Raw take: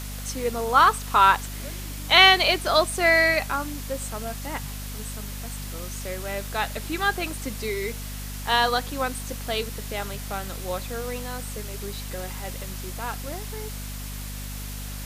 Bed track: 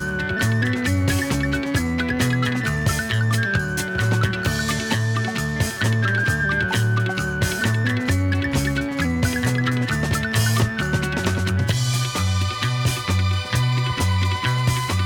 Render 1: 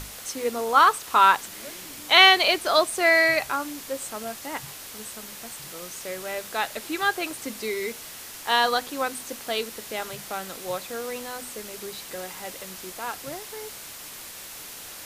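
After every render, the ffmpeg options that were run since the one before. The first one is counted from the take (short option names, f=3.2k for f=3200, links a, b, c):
-af "bandreject=f=50:t=h:w=6,bandreject=f=100:t=h:w=6,bandreject=f=150:t=h:w=6,bandreject=f=200:t=h:w=6,bandreject=f=250:t=h:w=6"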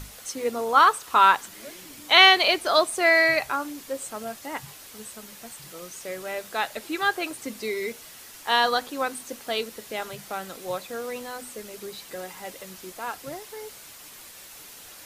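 -af "afftdn=nr=6:nf=-41"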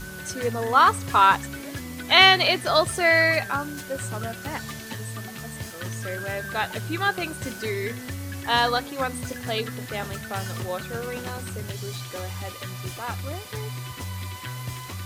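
-filter_complex "[1:a]volume=-14dB[a];[0:a][a]amix=inputs=2:normalize=0"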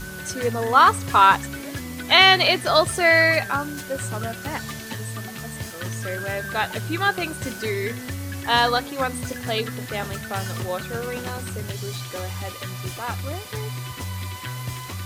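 -af "volume=2.5dB,alimiter=limit=-2dB:level=0:latency=1"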